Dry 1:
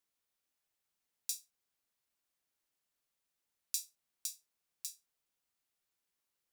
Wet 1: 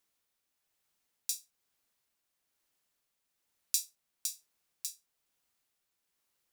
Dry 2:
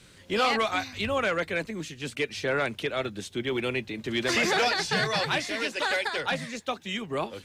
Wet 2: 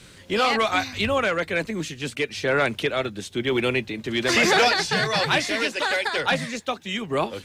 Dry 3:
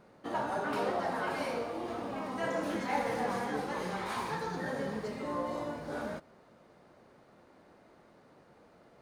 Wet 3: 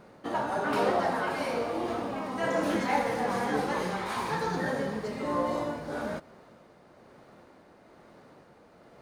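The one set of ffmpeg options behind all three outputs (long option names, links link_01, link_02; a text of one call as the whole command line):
ffmpeg -i in.wav -af "tremolo=f=1.1:d=0.32,volume=6.5dB" out.wav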